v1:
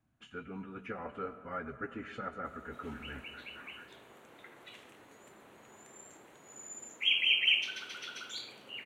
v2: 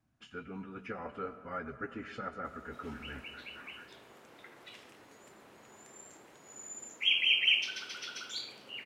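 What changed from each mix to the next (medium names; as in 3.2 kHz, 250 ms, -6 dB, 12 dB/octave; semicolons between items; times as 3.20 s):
master: add peaking EQ 5.1 kHz +11.5 dB 0.3 oct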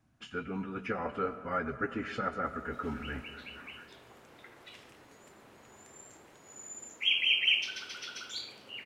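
speech +6.5 dB; background: remove high-pass 110 Hz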